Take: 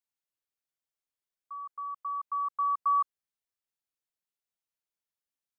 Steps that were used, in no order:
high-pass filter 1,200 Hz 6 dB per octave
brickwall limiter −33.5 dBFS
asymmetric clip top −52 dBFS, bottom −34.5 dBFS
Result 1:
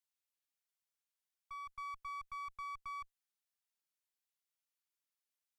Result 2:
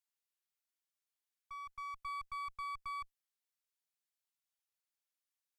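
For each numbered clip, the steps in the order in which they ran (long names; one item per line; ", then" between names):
brickwall limiter, then high-pass filter, then asymmetric clip
high-pass filter, then brickwall limiter, then asymmetric clip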